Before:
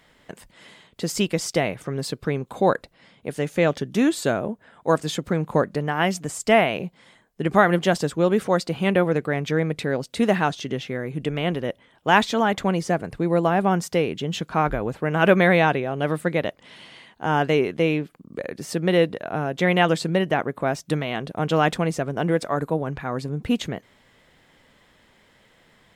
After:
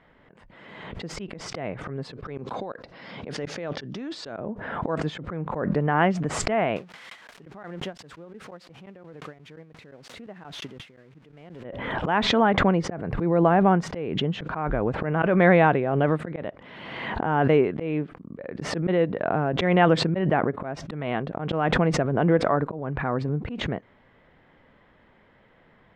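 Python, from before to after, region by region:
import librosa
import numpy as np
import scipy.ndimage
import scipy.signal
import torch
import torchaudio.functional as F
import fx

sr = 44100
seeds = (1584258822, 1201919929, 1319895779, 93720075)

y = fx.chain(x, sr, fx.highpass(hz=160.0, slope=6),
    fx.peak_eq(hz=5100.0, db=13.5, octaves=0.89),
    fx.over_compress(threshold_db=-29.0, ratio=-1.0), at=(2.25, 4.4))
y = fx.chain(y, sr, fx.crossing_spikes(level_db=-16.0),
    fx.tremolo_decay(direction='decaying', hz=5.7, depth_db=40), at=(6.76, 11.64))
y = scipy.signal.sosfilt(scipy.signal.butter(2, 1800.0, 'lowpass', fs=sr, output='sos'), y)
y = fx.auto_swell(y, sr, attack_ms=238.0)
y = fx.pre_swell(y, sr, db_per_s=36.0)
y = y * 10.0 ** (1.0 / 20.0)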